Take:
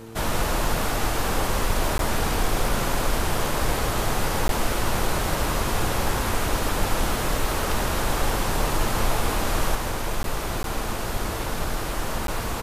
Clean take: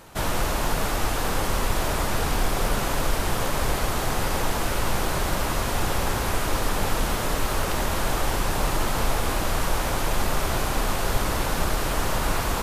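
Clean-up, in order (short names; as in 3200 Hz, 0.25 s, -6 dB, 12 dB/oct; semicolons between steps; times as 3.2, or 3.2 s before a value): de-hum 112.9 Hz, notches 4; interpolate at 1.98/4.48/10.23/10.63/12.27, 12 ms; inverse comb 0.161 s -7.5 dB; gain correction +4 dB, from 9.75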